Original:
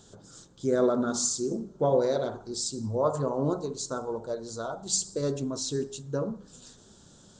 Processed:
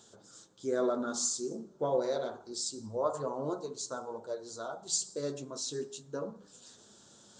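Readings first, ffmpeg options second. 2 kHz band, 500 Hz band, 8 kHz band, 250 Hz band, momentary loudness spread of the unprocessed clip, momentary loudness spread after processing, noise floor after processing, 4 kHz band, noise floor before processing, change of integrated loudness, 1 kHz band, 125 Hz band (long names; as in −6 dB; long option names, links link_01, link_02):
−3.5 dB, −6.0 dB, −4.0 dB, −8.5 dB, 10 LU, 16 LU, −60 dBFS, −4.0 dB, −56 dBFS, −6.0 dB, −4.5 dB, −13.0 dB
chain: -af "highpass=frequency=380:poles=1,areverse,acompressor=mode=upward:threshold=-48dB:ratio=2.5,areverse,flanger=delay=8.8:depth=4.7:regen=-40:speed=0.28:shape=sinusoidal"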